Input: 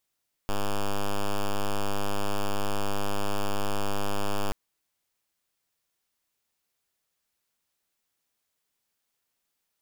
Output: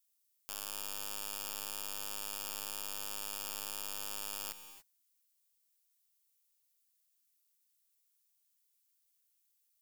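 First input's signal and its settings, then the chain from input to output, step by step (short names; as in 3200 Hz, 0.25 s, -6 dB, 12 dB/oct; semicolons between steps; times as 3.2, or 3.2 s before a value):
pulse 101 Hz, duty 5% -25 dBFS 4.03 s
pre-emphasis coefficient 0.97; non-linear reverb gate 0.31 s rising, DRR 9.5 dB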